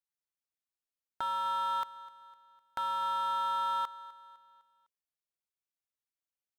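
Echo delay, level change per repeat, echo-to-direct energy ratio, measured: 253 ms, −6.5 dB, −18.0 dB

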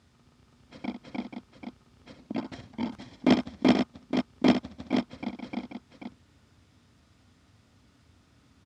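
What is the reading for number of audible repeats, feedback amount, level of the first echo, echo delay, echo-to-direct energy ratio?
2, repeats not evenly spaced, −9.5 dB, 65 ms, −4.5 dB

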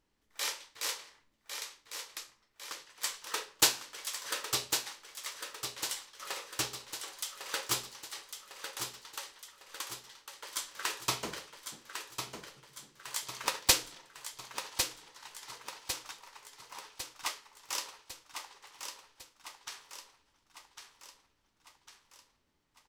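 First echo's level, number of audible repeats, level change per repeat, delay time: −7.0 dB, 5, −5.5 dB, 1,102 ms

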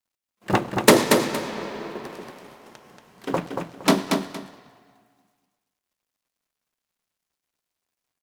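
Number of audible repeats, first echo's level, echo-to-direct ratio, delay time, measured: 2, −5.0 dB, −5.0 dB, 232 ms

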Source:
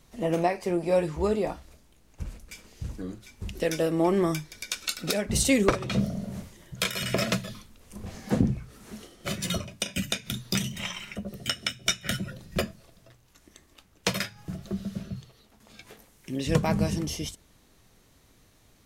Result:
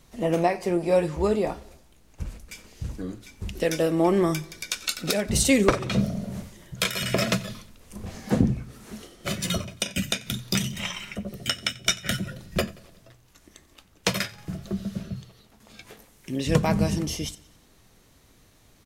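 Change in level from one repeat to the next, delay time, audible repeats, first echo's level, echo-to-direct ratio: −5.5 dB, 90 ms, 3, −22.0 dB, −20.5 dB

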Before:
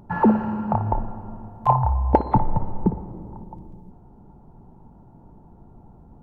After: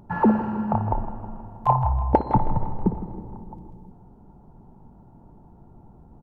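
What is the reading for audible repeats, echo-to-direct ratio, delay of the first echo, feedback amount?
5, −11.5 dB, 160 ms, 59%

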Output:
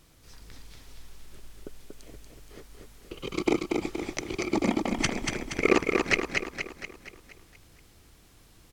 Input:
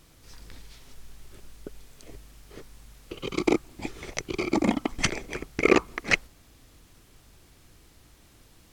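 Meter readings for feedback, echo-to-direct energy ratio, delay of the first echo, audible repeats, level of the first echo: 51%, −2.5 dB, 236 ms, 6, −4.0 dB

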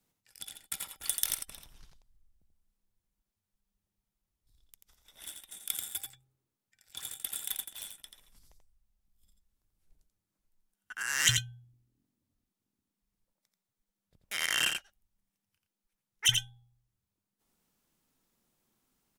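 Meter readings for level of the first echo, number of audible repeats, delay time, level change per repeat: −5.5 dB, 1, 86 ms, repeats not evenly spaced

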